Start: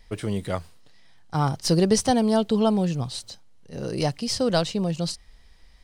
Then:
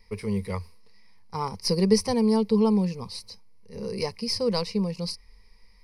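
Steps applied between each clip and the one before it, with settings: ripple EQ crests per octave 0.87, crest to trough 16 dB; gain -6.5 dB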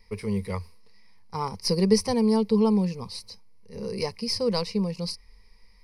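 nothing audible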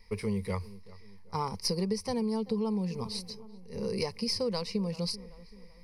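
darkening echo 0.385 s, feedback 46%, low-pass 2100 Hz, level -22 dB; compressor 12:1, threshold -27 dBFS, peak gain reduction 14 dB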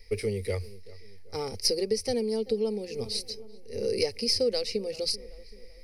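fixed phaser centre 420 Hz, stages 4; gain +6.5 dB

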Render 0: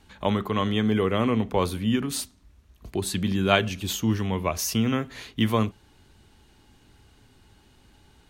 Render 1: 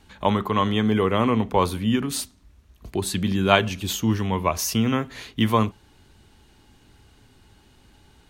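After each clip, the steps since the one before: dynamic EQ 960 Hz, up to +6 dB, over -41 dBFS, Q 2.7; gain +2 dB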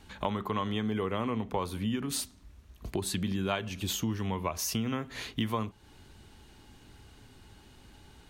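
compressor 4:1, threshold -30 dBFS, peak gain reduction 16 dB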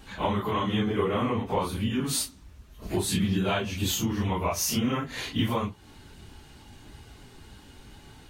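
phase scrambler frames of 0.1 s; gain +5.5 dB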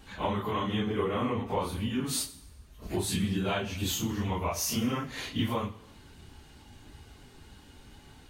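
reverb, pre-delay 3 ms, DRR 12.5 dB; gain -3.5 dB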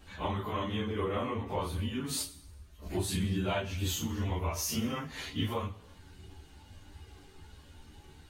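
chorus voices 6, 0.29 Hz, delay 12 ms, depth 1.8 ms

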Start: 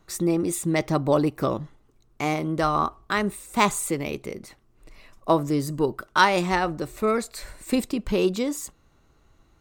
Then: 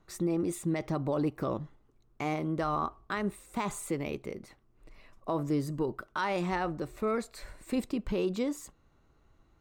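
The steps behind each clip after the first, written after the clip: high shelf 3800 Hz -8.5 dB; limiter -16.5 dBFS, peak gain reduction 10.5 dB; gain -5 dB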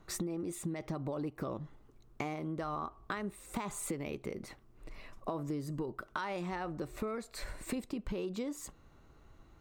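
compressor 10:1, threshold -40 dBFS, peak gain reduction 14.5 dB; gain +5.5 dB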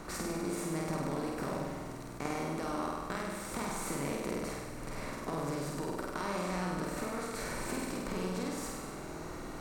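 per-bin compression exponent 0.4; flutter echo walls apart 8.5 m, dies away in 1.3 s; attack slew limiter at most 280 dB/s; gain -7 dB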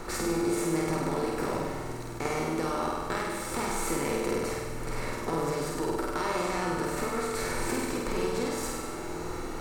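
reverb, pre-delay 3 ms, DRR 6.5 dB; gain +5 dB

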